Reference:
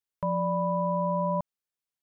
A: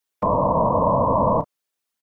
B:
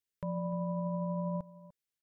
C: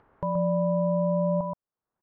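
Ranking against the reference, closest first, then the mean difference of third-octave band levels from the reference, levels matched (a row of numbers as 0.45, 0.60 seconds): C, B, A; 1.5, 3.0, 12.0 decibels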